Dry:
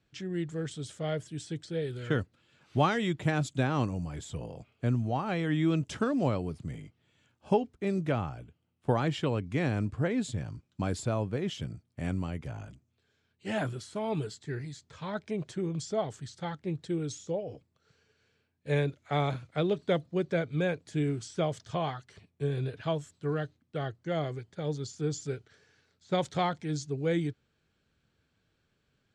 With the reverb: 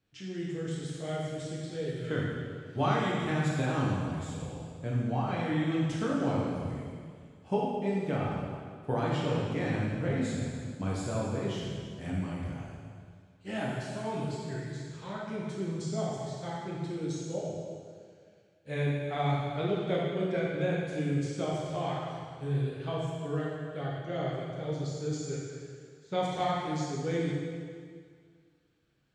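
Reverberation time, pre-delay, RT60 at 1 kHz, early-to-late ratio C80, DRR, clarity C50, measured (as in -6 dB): 2.0 s, 5 ms, 2.0 s, 1.0 dB, -5.5 dB, -1.5 dB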